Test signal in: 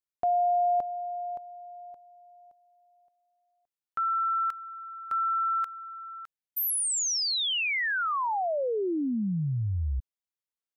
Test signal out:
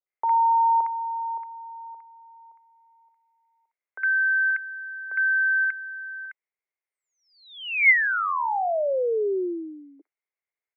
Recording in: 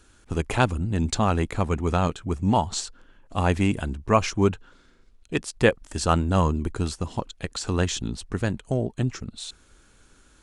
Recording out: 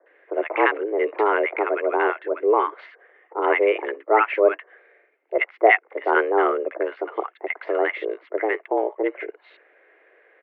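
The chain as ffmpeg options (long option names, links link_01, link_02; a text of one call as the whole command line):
ffmpeg -i in.wav -filter_complex "[0:a]equalizer=frequency=1900:width=7:gain=12,highpass=frequency=150:width_type=q:width=0.5412,highpass=frequency=150:width_type=q:width=1.307,lowpass=frequency=2200:width_type=q:width=0.5176,lowpass=frequency=2200:width_type=q:width=0.7071,lowpass=frequency=2200:width_type=q:width=1.932,afreqshift=210,acrossover=split=1100[link_01][link_02];[link_02]adelay=60[link_03];[link_01][link_03]amix=inputs=2:normalize=0,volume=5dB" out.wav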